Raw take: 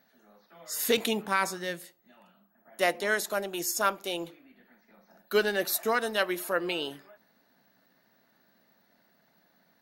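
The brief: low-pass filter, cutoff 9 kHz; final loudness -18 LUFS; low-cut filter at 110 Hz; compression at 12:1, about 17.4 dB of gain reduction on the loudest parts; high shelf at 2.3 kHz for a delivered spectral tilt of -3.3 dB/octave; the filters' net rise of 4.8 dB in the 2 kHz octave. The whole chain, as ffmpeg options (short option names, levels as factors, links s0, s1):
-af "highpass=110,lowpass=9000,equalizer=f=2000:t=o:g=9,highshelf=f=2300:g=-5.5,acompressor=threshold=0.0158:ratio=12,volume=14.1"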